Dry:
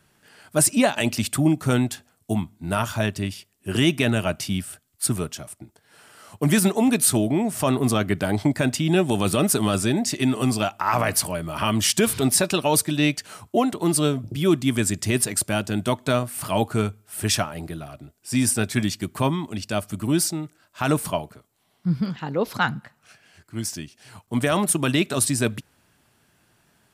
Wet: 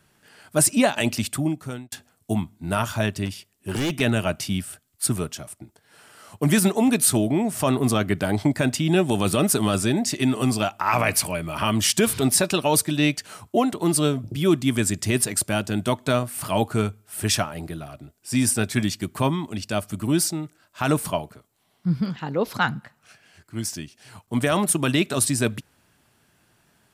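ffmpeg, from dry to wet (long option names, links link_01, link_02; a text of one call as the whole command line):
ffmpeg -i in.wav -filter_complex "[0:a]asettb=1/sr,asplit=3[link_01][link_02][link_03];[link_01]atrim=end=3.254[link_04];[link_02]atrim=start=3.25:end=4.01,asetpts=PTS-STARTPTS,afade=type=in:duration=0.004:curve=qsin,afade=type=out:start_time=0.756:duration=0.004:curve=qsin,asoftclip=type=hard:threshold=-21.5dB[link_05];[link_03]atrim=start=4.006[link_06];[link_04][link_05]acrossfade=duration=0.004:curve1=hsin:curve2=qsin[link_07];[link_07][link_06]acrossfade=duration=0.004:curve1=qsin:curve2=hsin,asettb=1/sr,asplit=3[link_08][link_09][link_10];[link_08]atrim=end=10.864[link_11];[link_09]atrim=start=10.86:end=11.55,asetpts=PTS-STARTPTS,afade=type=in:duration=0.004:curve=qsin,afade=type=out:start_time=0.686:duration=0.004:curve=qsin,equalizer=frequency=2400:width_type=o:width=0.26:gain=9.5[link_12];[link_10]atrim=start=11.546[link_13];[link_11][link_12]acrossfade=duration=0.004:curve1=hsin:curve2=qsin[link_14];[link_14][link_13]acrossfade=duration=0.004:curve1=qsin:curve2=hsin,asplit=2[link_15][link_16];[link_15]atrim=end=1.92,asetpts=PTS-STARTPTS,afade=type=out:start_time=1.11:duration=0.81[link_17];[link_16]atrim=start=1.92,asetpts=PTS-STARTPTS,afade=type=in:duration=0.004:curve=hsin[link_18];[link_17][link_18]concat=n=2:v=0:a=1" out.wav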